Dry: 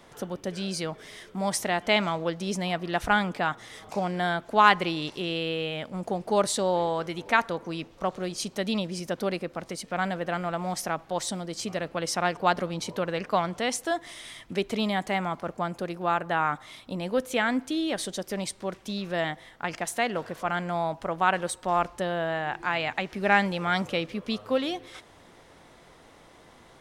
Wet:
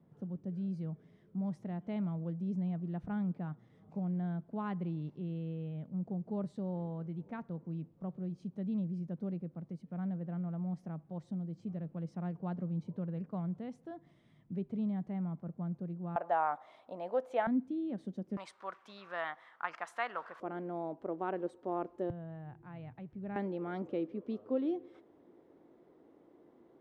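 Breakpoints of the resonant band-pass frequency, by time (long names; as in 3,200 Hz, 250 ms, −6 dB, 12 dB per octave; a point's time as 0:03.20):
resonant band-pass, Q 2.7
160 Hz
from 0:16.16 700 Hz
from 0:17.47 210 Hz
from 0:18.37 1,200 Hz
from 0:20.40 350 Hz
from 0:22.10 120 Hz
from 0:23.36 330 Hz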